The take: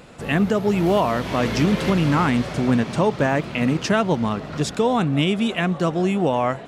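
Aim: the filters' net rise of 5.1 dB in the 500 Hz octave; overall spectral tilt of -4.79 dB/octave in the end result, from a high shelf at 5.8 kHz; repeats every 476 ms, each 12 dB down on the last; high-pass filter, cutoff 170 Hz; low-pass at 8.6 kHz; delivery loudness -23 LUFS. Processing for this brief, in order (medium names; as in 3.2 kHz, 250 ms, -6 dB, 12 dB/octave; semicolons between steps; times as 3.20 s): high-pass 170 Hz; low-pass 8.6 kHz; peaking EQ 500 Hz +6.5 dB; treble shelf 5.8 kHz +6 dB; feedback delay 476 ms, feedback 25%, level -12 dB; trim -4.5 dB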